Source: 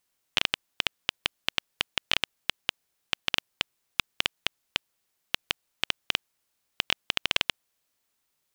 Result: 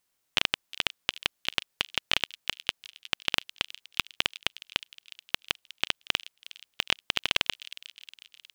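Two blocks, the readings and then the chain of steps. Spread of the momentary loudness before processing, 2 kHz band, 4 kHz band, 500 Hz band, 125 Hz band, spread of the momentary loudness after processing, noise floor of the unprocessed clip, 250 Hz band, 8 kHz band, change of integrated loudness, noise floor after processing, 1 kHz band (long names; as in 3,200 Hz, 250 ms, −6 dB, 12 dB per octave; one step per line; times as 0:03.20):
8 LU, 0.0 dB, 0.0 dB, 0.0 dB, 0.0 dB, 19 LU, −78 dBFS, 0.0 dB, +0.5 dB, 0.0 dB, −77 dBFS, 0.0 dB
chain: delay with a high-pass on its return 362 ms, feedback 55%, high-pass 3,100 Hz, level −13.5 dB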